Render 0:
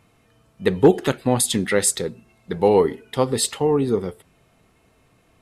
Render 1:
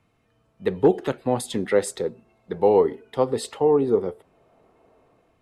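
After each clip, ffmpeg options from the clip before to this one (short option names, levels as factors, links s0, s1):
-filter_complex "[0:a]highshelf=f=5500:g=-8.5,acrossover=split=340|980|2500[s0][s1][s2][s3];[s1]dynaudnorm=f=190:g=5:m=5.96[s4];[s0][s4][s2][s3]amix=inputs=4:normalize=0,volume=0.422"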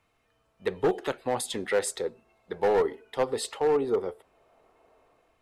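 -af "equalizer=f=160:w=0.53:g=-12,asoftclip=type=hard:threshold=0.119"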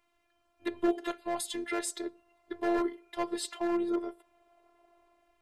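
-af "afftfilt=real='hypot(re,im)*cos(PI*b)':imag='0':win_size=512:overlap=0.75"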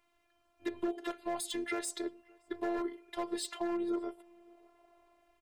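-filter_complex "[0:a]acompressor=threshold=0.0316:ratio=6,aeval=exprs='clip(val(0),-1,0.0562)':c=same,asplit=2[s0][s1];[s1]adelay=571.4,volume=0.0447,highshelf=f=4000:g=-12.9[s2];[s0][s2]amix=inputs=2:normalize=0"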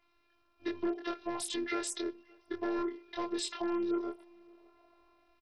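-filter_complex "[0:a]asplit=2[s0][s1];[s1]adelay=24,volume=0.794[s2];[s0][s2]amix=inputs=2:normalize=0" -ar 44100 -c:a sbc -b:a 64k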